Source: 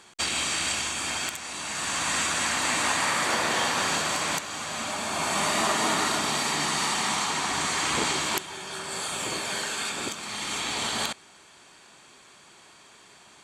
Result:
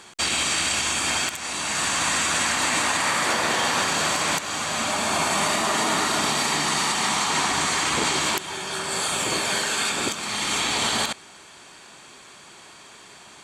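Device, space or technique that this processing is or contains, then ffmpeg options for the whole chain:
clipper into limiter: -af "asoftclip=type=hard:threshold=0.211,alimiter=limit=0.106:level=0:latency=1:release=94,volume=2.11"

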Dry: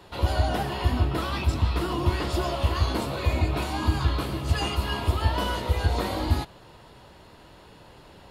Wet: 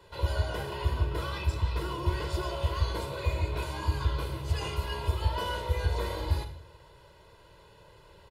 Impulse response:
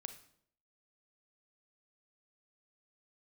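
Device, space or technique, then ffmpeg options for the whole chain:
microphone above a desk: -filter_complex "[0:a]aecho=1:1:2:0.8[s0];[1:a]atrim=start_sample=2205[s1];[s0][s1]afir=irnorm=-1:irlink=0,volume=0.631"

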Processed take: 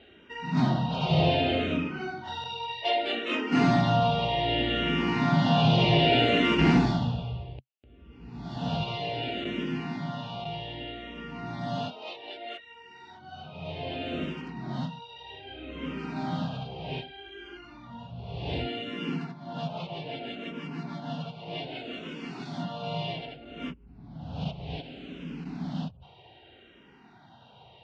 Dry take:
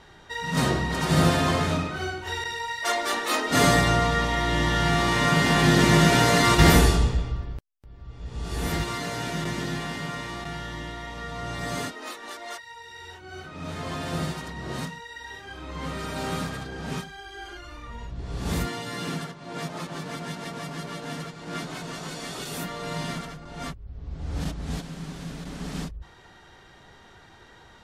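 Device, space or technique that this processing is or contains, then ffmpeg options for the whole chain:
barber-pole phaser into a guitar amplifier: -filter_complex "[0:a]asplit=2[s0][s1];[s1]afreqshift=-0.64[s2];[s0][s2]amix=inputs=2:normalize=1,asoftclip=type=tanh:threshold=0.211,highpass=95,equalizer=f=130:t=q:w=4:g=4,equalizer=f=240:t=q:w=4:g=6,equalizer=f=710:t=q:w=4:g=5,equalizer=f=1200:t=q:w=4:g=-8,equalizer=f=1800:t=q:w=4:g=-9,equalizer=f=2800:t=q:w=4:g=8,lowpass=f=3900:w=0.5412,lowpass=f=3900:w=1.3066"

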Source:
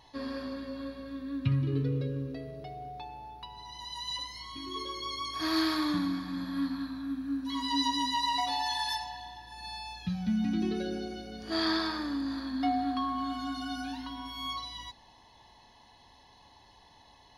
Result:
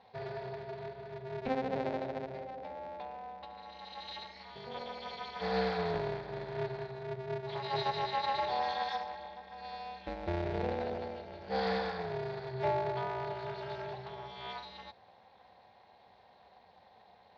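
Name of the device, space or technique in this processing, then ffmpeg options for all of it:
ring modulator pedal into a guitar cabinet: -af "aeval=exprs='val(0)*sgn(sin(2*PI*130*n/s))':c=same,highpass=83,equalizer=f=150:t=q:w=4:g=-6,equalizer=f=300:t=q:w=4:g=-10,equalizer=f=510:t=q:w=4:g=6,equalizer=f=760:t=q:w=4:g=8,equalizer=f=1200:t=q:w=4:g=-8,equalizer=f=3000:t=q:w=4:g=-8,lowpass=f=3700:w=0.5412,lowpass=f=3700:w=1.3066,volume=0.668"

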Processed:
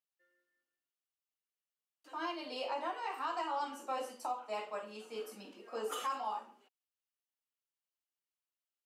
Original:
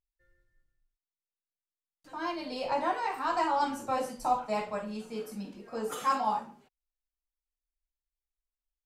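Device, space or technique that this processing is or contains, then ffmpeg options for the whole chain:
laptop speaker: -af "highpass=f=290:w=0.5412,highpass=f=290:w=1.3066,equalizer=f=1200:t=o:w=0.22:g=4.5,equalizer=f=2900:t=o:w=0.21:g=8.5,alimiter=level_in=1.06:limit=0.0631:level=0:latency=1:release=480,volume=0.944,volume=0.668"

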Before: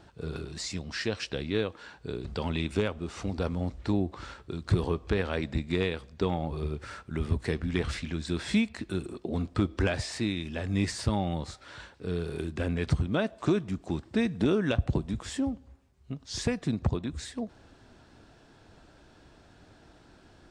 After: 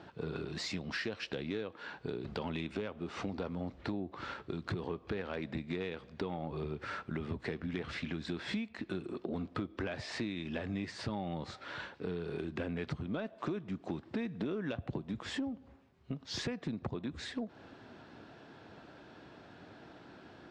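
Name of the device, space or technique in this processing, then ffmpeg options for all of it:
AM radio: -af "highpass=140,lowpass=3600,acompressor=threshold=0.0126:ratio=6,asoftclip=type=tanh:threshold=0.0376,volume=1.58"

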